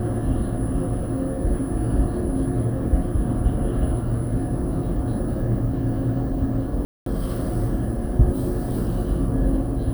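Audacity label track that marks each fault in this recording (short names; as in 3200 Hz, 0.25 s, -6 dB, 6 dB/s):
6.850000	7.060000	gap 0.213 s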